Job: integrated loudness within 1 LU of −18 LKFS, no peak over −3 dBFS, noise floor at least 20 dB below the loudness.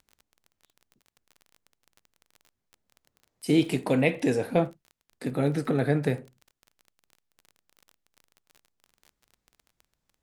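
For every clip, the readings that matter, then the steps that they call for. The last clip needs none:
crackle rate 25 per second; integrated loudness −27.0 LKFS; sample peak −7.0 dBFS; target loudness −18.0 LKFS
→ click removal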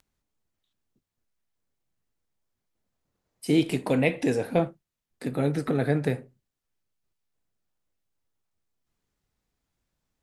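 crackle rate 0.098 per second; integrated loudness −26.5 LKFS; sample peak −7.0 dBFS; target loudness −18.0 LKFS
→ level +8.5 dB
brickwall limiter −3 dBFS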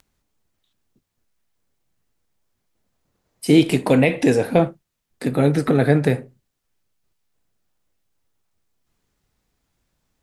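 integrated loudness −18.5 LKFS; sample peak −3.0 dBFS; background noise floor −76 dBFS

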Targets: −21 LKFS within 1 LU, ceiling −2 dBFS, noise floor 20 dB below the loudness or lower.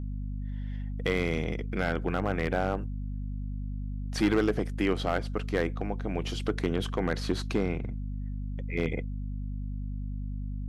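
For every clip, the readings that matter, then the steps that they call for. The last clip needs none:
share of clipped samples 0.4%; peaks flattened at −17.5 dBFS; mains hum 50 Hz; hum harmonics up to 250 Hz; level of the hum −32 dBFS; integrated loudness −32.0 LKFS; sample peak −17.5 dBFS; target loudness −21.0 LKFS
→ clipped peaks rebuilt −17.5 dBFS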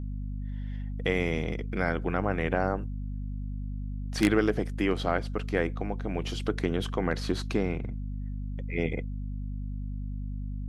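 share of clipped samples 0.0%; mains hum 50 Hz; hum harmonics up to 250 Hz; level of the hum −32 dBFS
→ hum removal 50 Hz, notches 5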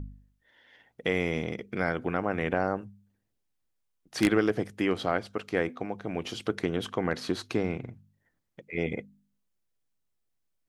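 mains hum none found; integrated loudness −30.5 LKFS; sample peak −8.5 dBFS; target loudness −21.0 LKFS
→ level +9.5 dB
brickwall limiter −2 dBFS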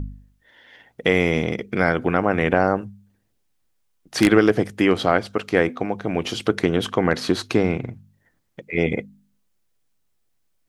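integrated loudness −21.0 LKFS; sample peak −2.0 dBFS; background noise floor −68 dBFS

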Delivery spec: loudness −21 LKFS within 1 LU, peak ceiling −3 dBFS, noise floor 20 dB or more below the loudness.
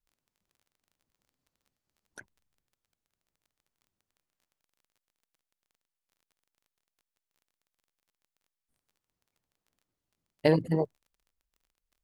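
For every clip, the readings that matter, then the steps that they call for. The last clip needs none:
crackle rate 20 per second; integrated loudness −28.5 LKFS; sample peak −9.5 dBFS; target loudness −21.0 LKFS
→ click removal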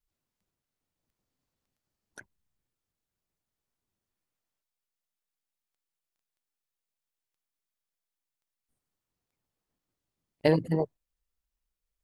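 crackle rate 0 per second; integrated loudness −28.5 LKFS; sample peak −9.5 dBFS; target loudness −21.0 LKFS
→ level +7.5 dB
brickwall limiter −3 dBFS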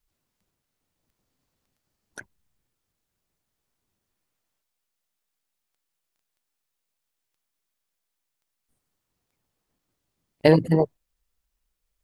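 integrated loudness −21.0 LKFS; sample peak −3.0 dBFS; background noise floor −82 dBFS

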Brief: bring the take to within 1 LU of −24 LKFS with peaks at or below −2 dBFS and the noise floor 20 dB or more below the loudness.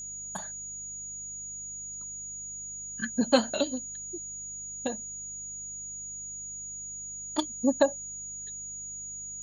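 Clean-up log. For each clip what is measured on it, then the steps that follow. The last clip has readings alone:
mains hum 50 Hz; hum harmonics up to 200 Hz; level of the hum −54 dBFS; interfering tone 6,800 Hz; level of the tone −37 dBFS; integrated loudness −33.0 LKFS; sample peak −8.0 dBFS; target loudness −24.0 LKFS
→ hum removal 50 Hz, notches 4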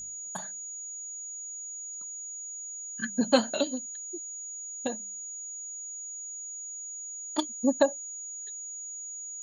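mains hum none found; interfering tone 6,800 Hz; level of the tone −37 dBFS
→ notch filter 6,800 Hz, Q 30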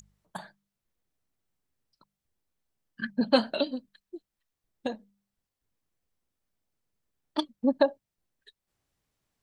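interfering tone none found; integrated loudness −29.5 LKFS; sample peak −8.5 dBFS; target loudness −24.0 LKFS
→ level +5.5 dB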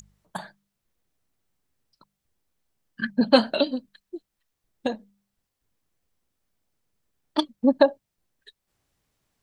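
integrated loudness −24.0 LKFS; sample peak −3.0 dBFS; background noise floor −82 dBFS

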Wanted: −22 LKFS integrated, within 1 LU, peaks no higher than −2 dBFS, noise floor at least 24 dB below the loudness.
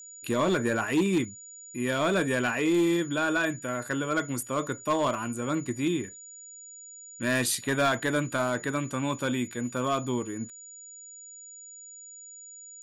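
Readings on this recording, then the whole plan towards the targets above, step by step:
share of clipped samples 0.7%; peaks flattened at −19.0 dBFS; interfering tone 6,900 Hz; level of the tone −44 dBFS; integrated loudness −28.0 LKFS; sample peak −19.0 dBFS; target loudness −22.0 LKFS
→ clipped peaks rebuilt −19 dBFS
notch filter 6,900 Hz, Q 30
level +6 dB

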